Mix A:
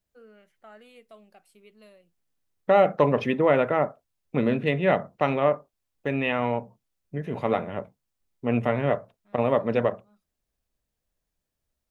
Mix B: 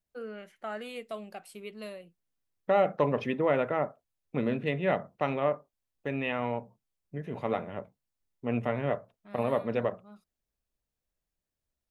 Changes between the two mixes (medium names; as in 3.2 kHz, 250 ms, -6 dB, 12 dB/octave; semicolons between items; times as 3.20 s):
first voice +11.5 dB; second voice -6.0 dB